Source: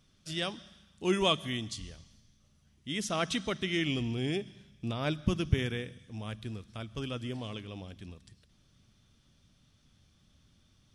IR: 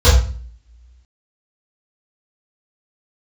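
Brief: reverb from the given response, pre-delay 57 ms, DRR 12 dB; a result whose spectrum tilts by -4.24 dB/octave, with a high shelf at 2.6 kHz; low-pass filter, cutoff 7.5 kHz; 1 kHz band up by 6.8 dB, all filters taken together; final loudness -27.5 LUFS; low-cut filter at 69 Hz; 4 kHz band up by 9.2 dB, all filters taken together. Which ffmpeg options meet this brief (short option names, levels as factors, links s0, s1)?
-filter_complex "[0:a]highpass=69,lowpass=7500,equalizer=f=1000:t=o:g=7.5,highshelf=f=2600:g=3.5,equalizer=f=4000:t=o:g=9,asplit=2[s0][s1];[1:a]atrim=start_sample=2205,adelay=57[s2];[s1][s2]afir=irnorm=-1:irlink=0,volume=0.0141[s3];[s0][s3]amix=inputs=2:normalize=0,volume=1.12"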